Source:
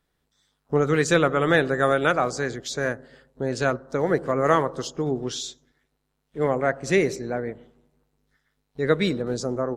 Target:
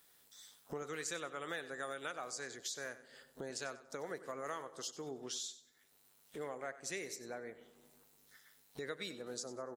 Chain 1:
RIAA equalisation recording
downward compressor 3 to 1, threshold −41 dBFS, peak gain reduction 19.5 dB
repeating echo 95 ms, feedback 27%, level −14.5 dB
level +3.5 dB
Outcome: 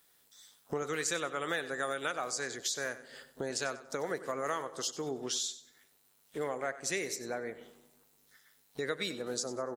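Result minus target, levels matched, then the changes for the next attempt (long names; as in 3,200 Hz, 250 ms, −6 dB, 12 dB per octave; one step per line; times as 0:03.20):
downward compressor: peak gain reduction −8 dB
change: downward compressor 3 to 1, threshold −53 dBFS, peak gain reduction 27.5 dB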